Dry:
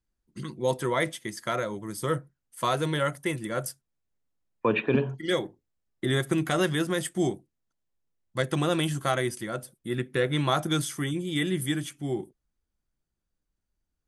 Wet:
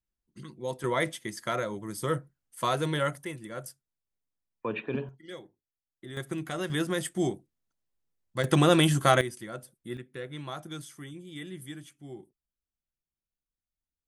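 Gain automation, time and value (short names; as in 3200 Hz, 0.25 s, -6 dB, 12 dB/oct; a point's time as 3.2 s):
-8 dB
from 0.84 s -1.5 dB
from 3.25 s -8.5 dB
from 5.09 s -16.5 dB
from 6.17 s -8.5 dB
from 6.7 s -2 dB
from 8.44 s +5 dB
from 9.21 s -6.5 dB
from 9.97 s -13.5 dB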